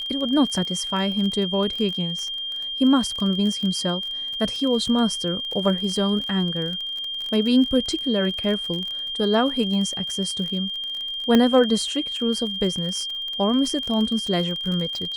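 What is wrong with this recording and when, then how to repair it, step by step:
crackle 33 per s -28 dBFS
whine 3.2 kHz -27 dBFS
11.35 s: pop -6 dBFS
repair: de-click; band-stop 3.2 kHz, Q 30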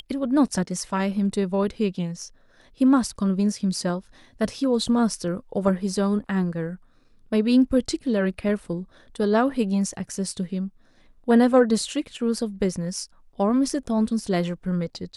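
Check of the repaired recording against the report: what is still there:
nothing left

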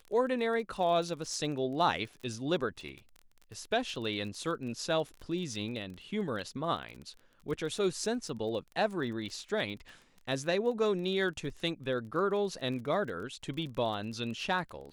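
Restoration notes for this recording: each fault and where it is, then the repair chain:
crackle 24 per s -39 dBFS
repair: de-click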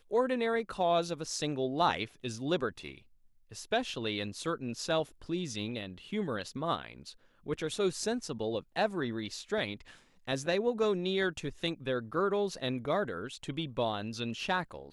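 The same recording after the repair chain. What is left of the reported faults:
nothing left

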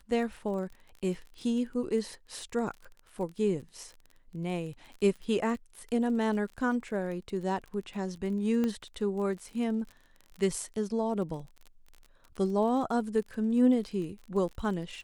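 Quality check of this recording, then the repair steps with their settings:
crackle 32 per s -39 dBFS
8.64 s: pop -19 dBFS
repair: de-click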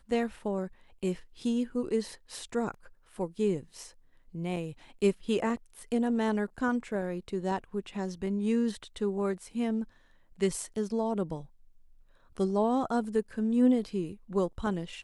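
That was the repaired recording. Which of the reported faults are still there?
nothing left

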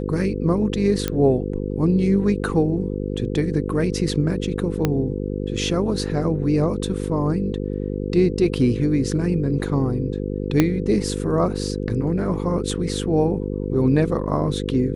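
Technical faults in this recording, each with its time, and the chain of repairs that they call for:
buzz 50 Hz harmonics 10 -26 dBFS
1.08 s: pop -8 dBFS
4.85 s: pop -6 dBFS
10.60 s: pop -3 dBFS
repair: de-click; de-hum 50 Hz, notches 10

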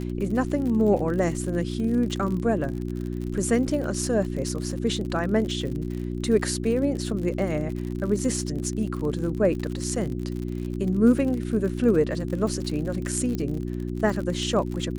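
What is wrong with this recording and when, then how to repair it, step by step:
crackle 57 per s -31 dBFS
hum 60 Hz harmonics 6 -30 dBFS
13.35 s: pop -17 dBFS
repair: de-click; de-hum 60 Hz, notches 6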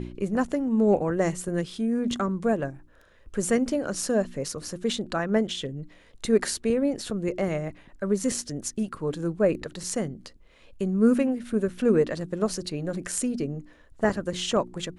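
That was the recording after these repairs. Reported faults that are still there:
nothing left

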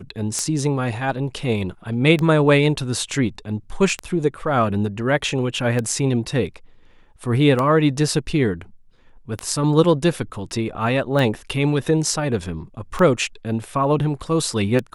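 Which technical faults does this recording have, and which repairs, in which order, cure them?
tick 33 1/3 rpm -10 dBFS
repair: de-click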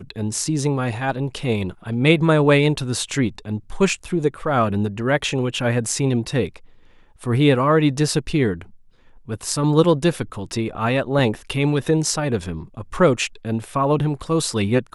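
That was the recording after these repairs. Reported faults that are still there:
nothing left

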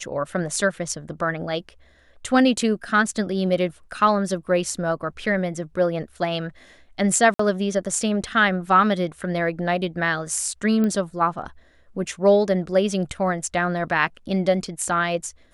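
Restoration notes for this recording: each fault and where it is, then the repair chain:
7.34–7.39 s: dropout 54 ms
10.84 s: pop -14 dBFS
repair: de-click; interpolate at 7.34 s, 54 ms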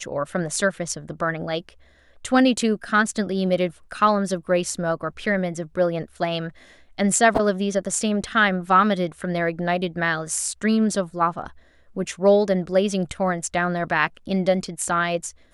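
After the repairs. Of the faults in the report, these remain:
nothing left

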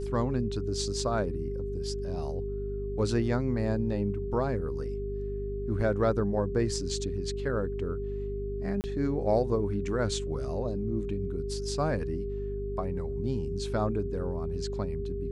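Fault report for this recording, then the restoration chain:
hum 50 Hz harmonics 5 -36 dBFS
whine 400 Hz -34 dBFS
8.81–8.84 s: dropout 29 ms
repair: de-hum 50 Hz, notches 5; band-stop 400 Hz, Q 30; interpolate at 8.81 s, 29 ms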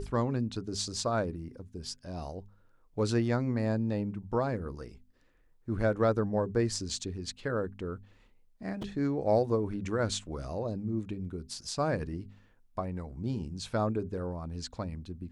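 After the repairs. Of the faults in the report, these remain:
nothing left

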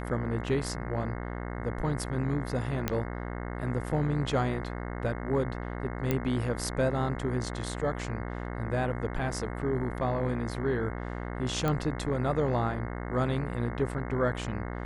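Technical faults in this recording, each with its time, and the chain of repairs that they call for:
buzz 60 Hz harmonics 36 -36 dBFS
2.88 s: pop -13 dBFS
6.11 s: pop -14 dBFS
11.68 s: pop -16 dBFS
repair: de-click; de-hum 60 Hz, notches 36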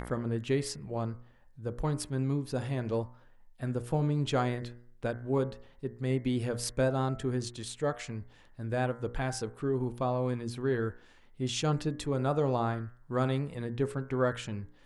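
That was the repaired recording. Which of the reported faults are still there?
2.88 s: pop

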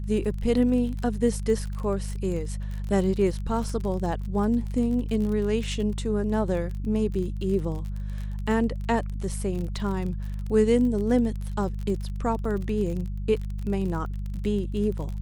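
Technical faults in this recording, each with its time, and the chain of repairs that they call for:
crackle 34 per s -32 dBFS
hum 50 Hz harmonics 4 -31 dBFS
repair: de-click; de-hum 50 Hz, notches 4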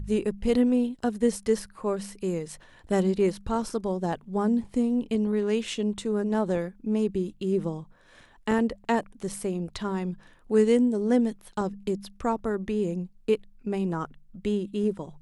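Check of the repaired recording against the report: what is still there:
nothing left

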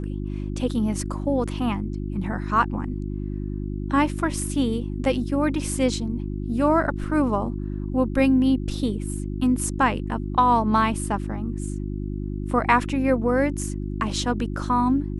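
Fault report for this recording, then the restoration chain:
hum 50 Hz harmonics 7 -29 dBFS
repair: de-hum 50 Hz, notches 7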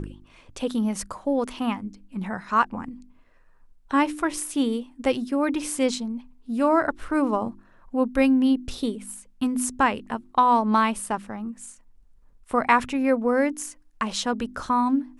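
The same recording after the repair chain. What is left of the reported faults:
nothing left

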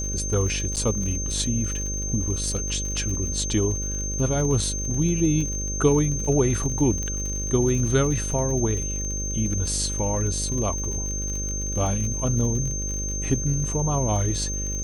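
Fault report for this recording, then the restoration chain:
buzz 50 Hz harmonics 12 -30 dBFS
crackle 52 per s -30 dBFS
whine 6.3 kHz -29 dBFS
0.76–0.77 s: dropout 7.7 ms
7.03 s: pop -18 dBFS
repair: de-click; de-hum 50 Hz, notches 12; band-stop 6.3 kHz, Q 30; interpolate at 0.76 s, 7.7 ms

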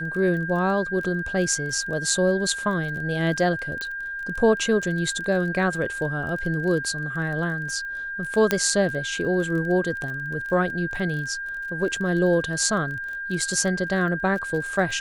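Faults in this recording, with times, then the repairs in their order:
crackle 27 per s -32 dBFS
whine 1.6 kHz -29 dBFS
3.81 s: pop -16 dBFS
8.51 s: pop -5 dBFS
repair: de-click; band-stop 1.6 kHz, Q 30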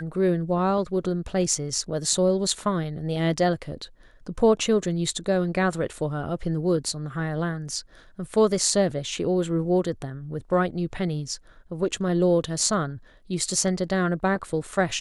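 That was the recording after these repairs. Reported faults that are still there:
8.51 s: pop

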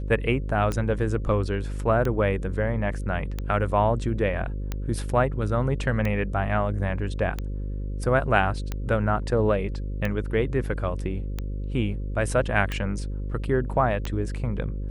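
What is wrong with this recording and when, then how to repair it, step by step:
buzz 50 Hz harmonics 11 -30 dBFS
tick 45 rpm -15 dBFS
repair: de-click; de-hum 50 Hz, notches 11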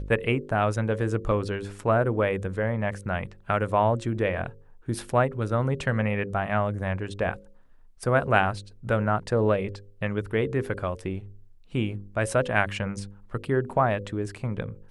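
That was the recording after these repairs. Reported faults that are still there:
nothing left

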